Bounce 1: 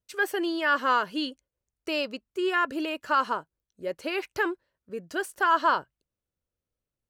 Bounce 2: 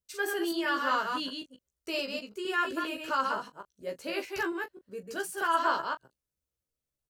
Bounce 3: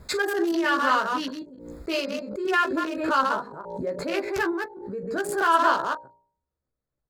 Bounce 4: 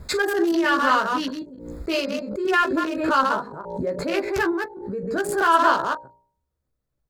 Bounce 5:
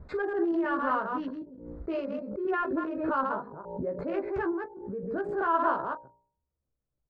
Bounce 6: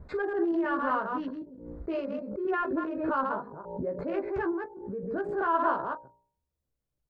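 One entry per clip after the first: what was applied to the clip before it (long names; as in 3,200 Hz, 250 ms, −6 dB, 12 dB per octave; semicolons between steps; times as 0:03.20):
delay that plays each chunk backwards 129 ms, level −4 dB; bass and treble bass +1 dB, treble +7 dB; on a send: ambience of single reflections 15 ms −3 dB, 39 ms −13.5 dB; on the sum: level −7.5 dB
adaptive Wiener filter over 15 samples; hum removal 58.73 Hz, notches 16; background raised ahead of every attack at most 56 dB per second; level +7 dB
low-shelf EQ 160 Hz +6.5 dB; level +2.5 dB
low-pass filter 1,200 Hz 12 dB per octave; level −6.5 dB
notch filter 1,300 Hz, Q 28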